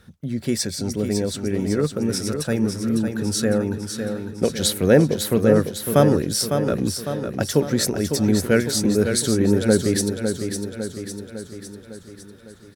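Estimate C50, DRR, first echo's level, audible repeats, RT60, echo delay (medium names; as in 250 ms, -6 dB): no reverb, no reverb, -7.0 dB, 6, no reverb, 554 ms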